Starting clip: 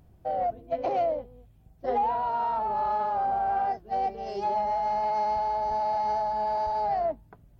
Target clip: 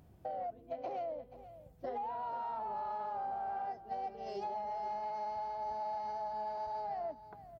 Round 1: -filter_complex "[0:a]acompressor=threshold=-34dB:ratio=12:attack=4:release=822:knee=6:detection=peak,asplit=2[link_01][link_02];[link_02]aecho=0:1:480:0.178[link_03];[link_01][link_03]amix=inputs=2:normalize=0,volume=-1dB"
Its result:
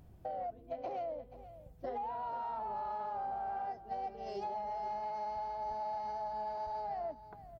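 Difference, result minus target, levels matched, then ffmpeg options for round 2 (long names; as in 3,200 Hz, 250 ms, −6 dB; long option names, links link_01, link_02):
125 Hz band +2.5 dB
-filter_complex "[0:a]acompressor=threshold=-34dB:ratio=12:attack=4:release=822:knee=6:detection=peak,highpass=frequency=94:poles=1,asplit=2[link_01][link_02];[link_02]aecho=0:1:480:0.178[link_03];[link_01][link_03]amix=inputs=2:normalize=0,volume=-1dB"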